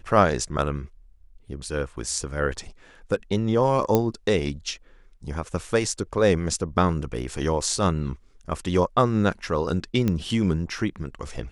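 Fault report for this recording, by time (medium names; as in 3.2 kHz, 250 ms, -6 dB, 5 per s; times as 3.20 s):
3.95 s: pop -7 dBFS
10.08 s: pop -12 dBFS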